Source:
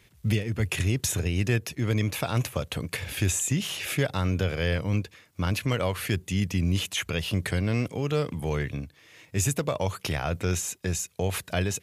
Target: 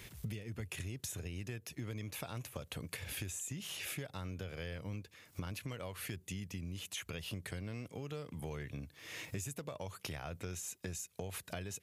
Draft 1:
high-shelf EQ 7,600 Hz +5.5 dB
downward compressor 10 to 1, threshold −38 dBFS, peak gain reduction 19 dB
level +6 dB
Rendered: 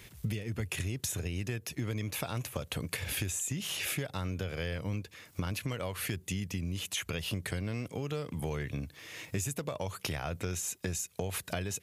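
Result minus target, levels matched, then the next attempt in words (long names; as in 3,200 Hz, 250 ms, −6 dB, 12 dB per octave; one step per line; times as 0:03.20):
downward compressor: peak gain reduction −7.5 dB
high-shelf EQ 7,600 Hz +5.5 dB
downward compressor 10 to 1, threshold −46.5 dBFS, peak gain reduction 26.5 dB
level +6 dB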